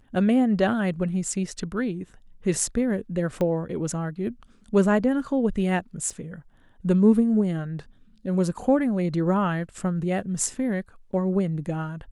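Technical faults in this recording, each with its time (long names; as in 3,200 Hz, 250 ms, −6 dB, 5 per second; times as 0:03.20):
0:03.41: click −16 dBFS
0:06.10: drop-out 4.2 ms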